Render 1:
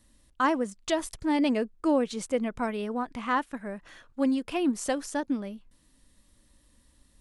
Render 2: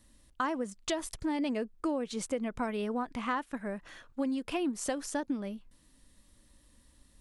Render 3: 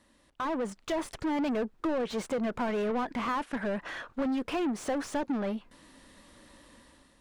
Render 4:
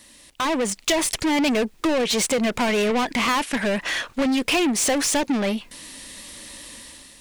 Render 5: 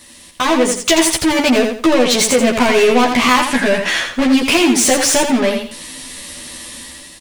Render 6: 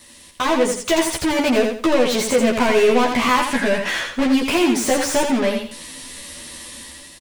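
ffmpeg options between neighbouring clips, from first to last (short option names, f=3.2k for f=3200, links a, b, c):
-af "acompressor=threshold=-29dB:ratio=6"
-filter_complex "[0:a]dynaudnorm=f=160:g=7:m=10dB,asplit=2[a][b];[b]highpass=f=720:p=1,volume=25dB,asoftclip=type=tanh:threshold=-15dB[c];[a][c]amix=inputs=2:normalize=0,lowpass=f=1.2k:p=1,volume=-6dB,volume=-8.5dB"
-af "aexciter=amount=3.2:drive=5.8:freq=2k,volume=8.5dB"
-filter_complex "[0:a]asplit=2[a][b];[b]adelay=12,volume=-2dB[c];[a][c]amix=inputs=2:normalize=0,asplit=2[d][e];[e]aecho=0:1:84|168|252|336:0.473|0.132|0.0371|0.0104[f];[d][f]amix=inputs=2:normalize=0,volume=5.5dB"
-filter_complex "[0:a]acrossover=split=1900[a][b];[a]asplit=2[c][d];[d]adelay=14,volume=-11.5dB[e];[c][e]amix=inputs=2:normalize=0[f];[b]asoftclip=type=tanh:threshold=-19dB[g];[f][g]amix=inputs=2:normalize=0,volume=-4dB"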